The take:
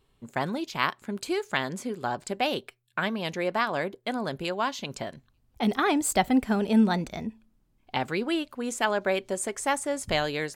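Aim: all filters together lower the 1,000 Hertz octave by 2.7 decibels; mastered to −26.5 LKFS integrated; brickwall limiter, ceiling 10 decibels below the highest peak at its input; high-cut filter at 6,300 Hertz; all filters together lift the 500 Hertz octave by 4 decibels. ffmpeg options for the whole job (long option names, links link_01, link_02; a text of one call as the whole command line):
ffmpeg -i in.wav -af "lowpass=6300,equalizer=frequency=500:width_type=o:gain=7,equalizer=frequency=1000:width_type=o:gain=-7,volume=3dB,alimiter=limit=-15.5dB:level=0:latency=1" out.wav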